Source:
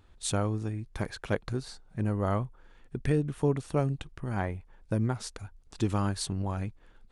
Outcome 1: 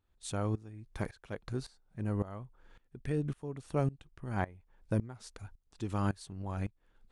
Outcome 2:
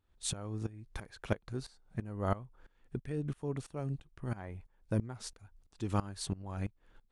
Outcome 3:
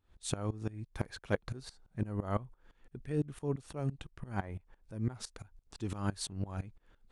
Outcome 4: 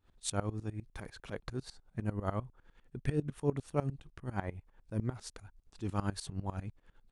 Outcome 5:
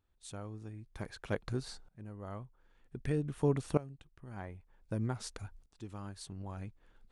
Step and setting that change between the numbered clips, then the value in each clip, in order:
dB-ramp tremolo, rate: 1.8, 3, 5.9, 10, 0.53 Hz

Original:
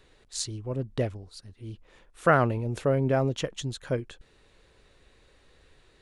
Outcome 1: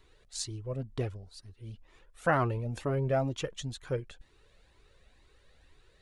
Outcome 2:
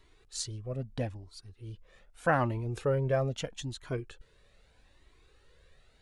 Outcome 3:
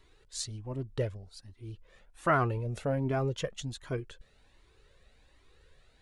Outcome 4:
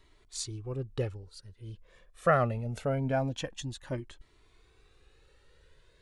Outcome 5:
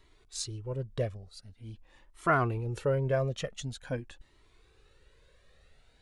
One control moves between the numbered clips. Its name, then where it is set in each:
cascading flanger, rate: 2.1, 0.79, 1.3, 0.24, 0.46 Hz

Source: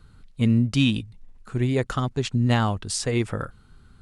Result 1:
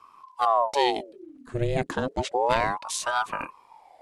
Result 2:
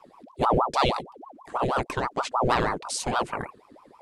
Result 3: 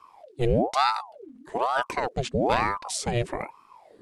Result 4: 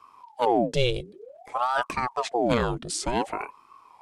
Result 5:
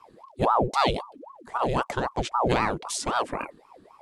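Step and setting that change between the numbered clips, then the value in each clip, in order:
ring modulator with a swept carrier, at: 0.31, 6.3, 1.1, 0.54, 3.8 Hz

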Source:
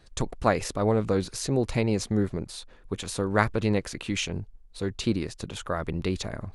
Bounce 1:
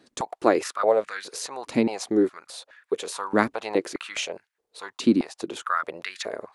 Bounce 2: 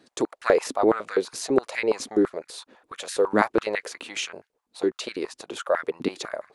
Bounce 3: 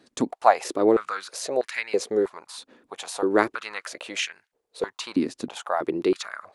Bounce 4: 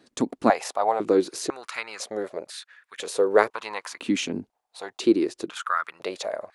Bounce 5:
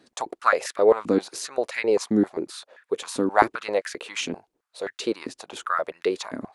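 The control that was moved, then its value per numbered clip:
stepped high-pass, rate: 4.8, 12, 3.1, 2, 7.6 Hz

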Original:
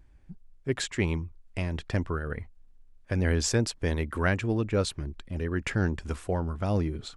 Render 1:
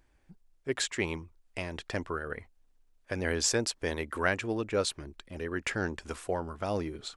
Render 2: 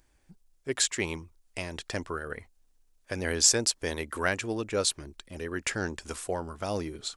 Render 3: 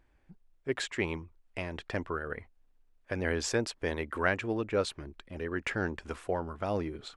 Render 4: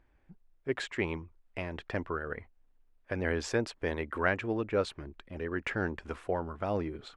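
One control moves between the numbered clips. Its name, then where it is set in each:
tone controls, treble: +2, +11, -7, -15 dB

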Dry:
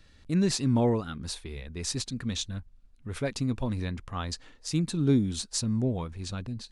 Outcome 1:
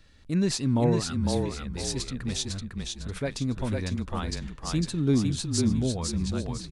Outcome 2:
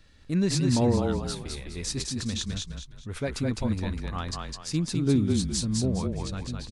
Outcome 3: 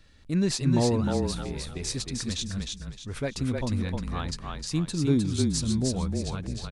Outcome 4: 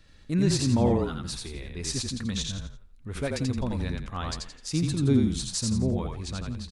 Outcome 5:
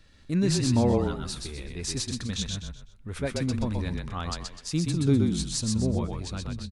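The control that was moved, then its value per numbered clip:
frequency-shifting echo, time: 503, 207, 308, 85, 126 ms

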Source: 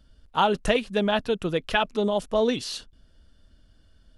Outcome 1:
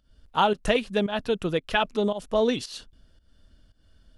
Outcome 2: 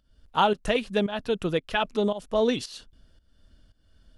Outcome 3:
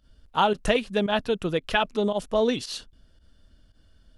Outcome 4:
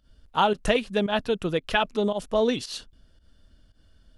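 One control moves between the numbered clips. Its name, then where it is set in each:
pump, release: 252, 413, 79, 122 ms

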